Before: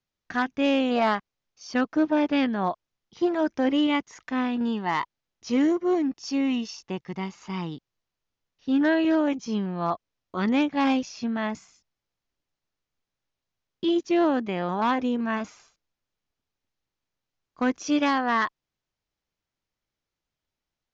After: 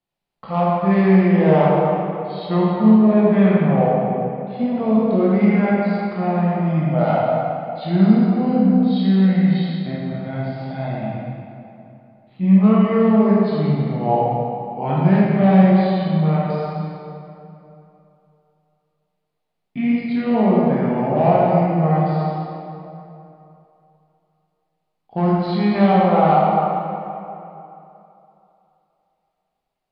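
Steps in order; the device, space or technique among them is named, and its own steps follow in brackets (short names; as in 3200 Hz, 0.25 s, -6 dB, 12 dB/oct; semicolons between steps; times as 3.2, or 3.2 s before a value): graphic EQ 125/250/1000/2000 Hz -7/+6/+8/-4 dB; slowed and reverbed (varispeed -30%; reverb RT60 3.0 s, pre-delay 14 ms, DRR -6.5 dB); gain -2.5 dB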